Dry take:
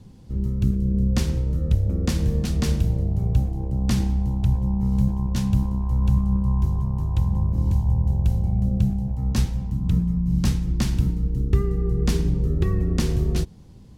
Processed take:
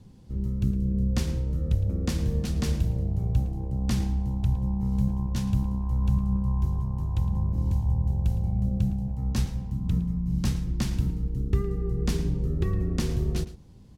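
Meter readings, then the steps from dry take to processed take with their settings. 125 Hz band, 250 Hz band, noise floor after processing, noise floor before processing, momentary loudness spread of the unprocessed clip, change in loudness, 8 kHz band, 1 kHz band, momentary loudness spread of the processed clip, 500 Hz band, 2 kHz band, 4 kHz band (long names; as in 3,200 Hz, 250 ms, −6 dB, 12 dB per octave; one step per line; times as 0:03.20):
−4.5 dB, −4.5 dB, −45 dBFS, −45 dBFS, 3 LU, −4.5 dB, −4.5 dB, −4.0 dB, 3 LU, −4.5 dB, −4.5 dB, −4.5 dB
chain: slap from a distant wall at 19 metres, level −15 dB
level −4.5 dB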